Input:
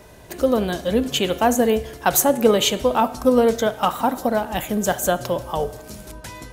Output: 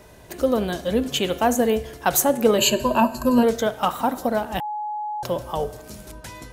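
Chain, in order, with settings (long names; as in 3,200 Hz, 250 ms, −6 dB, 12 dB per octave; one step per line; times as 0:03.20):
0:02.58–0:03.43: EQ curve with evenly spaced ripples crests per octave 1.4, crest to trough 17 dB
0:04.60–0:05.23: beep over 843 Hz −23.5 dBFS
level −2 dB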